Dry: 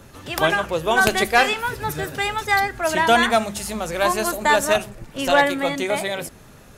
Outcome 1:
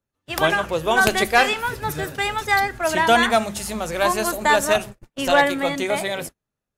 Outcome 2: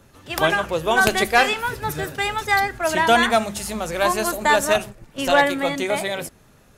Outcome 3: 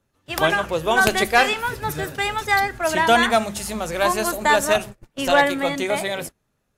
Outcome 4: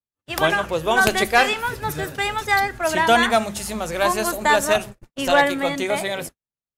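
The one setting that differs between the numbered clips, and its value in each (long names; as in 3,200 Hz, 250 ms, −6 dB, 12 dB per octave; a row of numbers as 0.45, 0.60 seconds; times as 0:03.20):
noise gate, range: −39, −7, −26, −56 decibels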